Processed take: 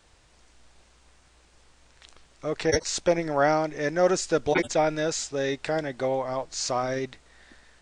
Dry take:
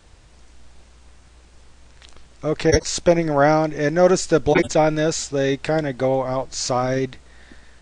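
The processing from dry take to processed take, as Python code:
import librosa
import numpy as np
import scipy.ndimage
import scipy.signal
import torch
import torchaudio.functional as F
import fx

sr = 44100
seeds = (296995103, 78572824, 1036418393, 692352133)

y = fx.low_shelf(x, sr, hz=300.0, db=-8.0)
y = y * 10.0 ** (-4.5 / 20.0)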